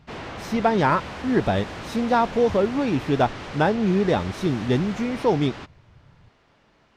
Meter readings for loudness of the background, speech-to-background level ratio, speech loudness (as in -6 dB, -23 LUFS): -35.5 LUFS, 12.5 dB, -23.0 LUFS